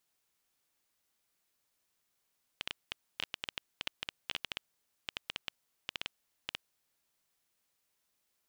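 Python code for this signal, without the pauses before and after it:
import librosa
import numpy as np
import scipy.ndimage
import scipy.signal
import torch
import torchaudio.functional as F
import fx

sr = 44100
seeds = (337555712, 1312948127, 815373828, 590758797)

y = fx.geiger_clicks(sr, seeds[0], length_s=4.14, per_s=8.3, level_db=-17.5)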